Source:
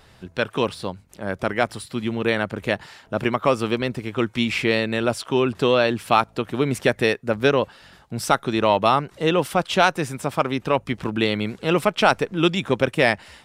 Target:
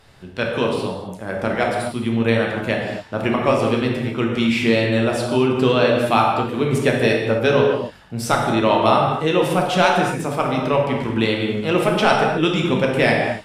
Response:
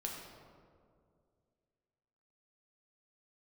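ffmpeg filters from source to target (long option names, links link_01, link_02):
-filter_complex "[1:a]atrim=start_sample=2205,afade=type=out:start_time=0.22:duration=0.01,atrim=end_sample=10143,asetrate=27783,aresample=44100[link_01];[0:a][link_01]afir=irnorm=-1:irlink=0"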